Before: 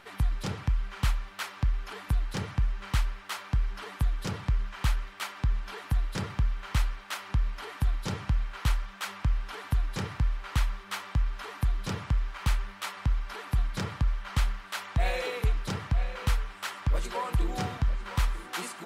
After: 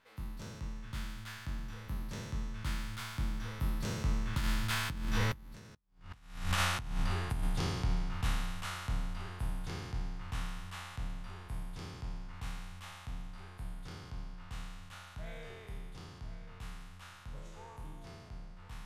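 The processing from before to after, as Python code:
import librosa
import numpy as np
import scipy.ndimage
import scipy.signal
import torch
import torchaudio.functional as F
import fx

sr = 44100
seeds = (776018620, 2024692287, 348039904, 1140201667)

y = fx.spec_trails(x, sr, decay_s=1.68)
y = fx.doppler_pass(y, sr, speed_mps=34, closest_m=2.5, pass_at_s=5.83)
y = fx.over_compress(y, sr, threshold_db=-49.0, ratio=-0.5)
y = y * 10.0 ** (13.0 / 20.0)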